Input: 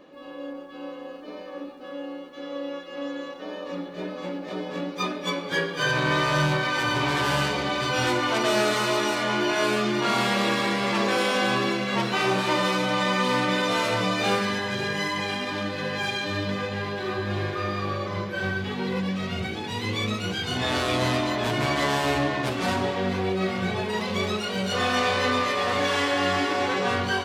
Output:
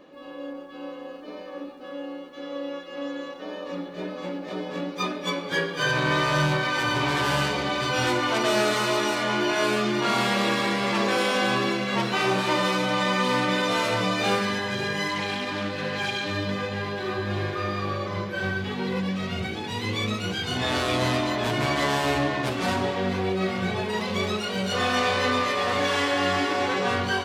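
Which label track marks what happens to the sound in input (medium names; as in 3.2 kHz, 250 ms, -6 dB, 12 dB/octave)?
15.080000	16.310000	loudspeaker Doppler distortion depth 0.12 ms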